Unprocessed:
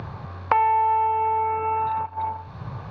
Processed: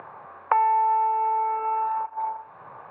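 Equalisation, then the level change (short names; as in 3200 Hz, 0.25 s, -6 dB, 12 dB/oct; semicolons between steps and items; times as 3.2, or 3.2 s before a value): BPF 610–2300 Hz; air absorption 490 m; +2.0 dB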